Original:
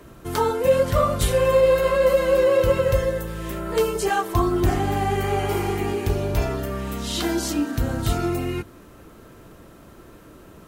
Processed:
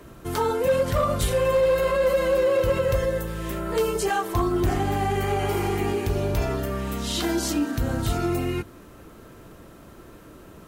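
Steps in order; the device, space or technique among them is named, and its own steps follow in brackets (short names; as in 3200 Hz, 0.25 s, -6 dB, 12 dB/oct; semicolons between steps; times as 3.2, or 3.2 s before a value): clipper into limiter (hard clip -12.5 dBFS, distortion -23 dB; limiter -15.5 dBFS, peak gain reduction 3 dB)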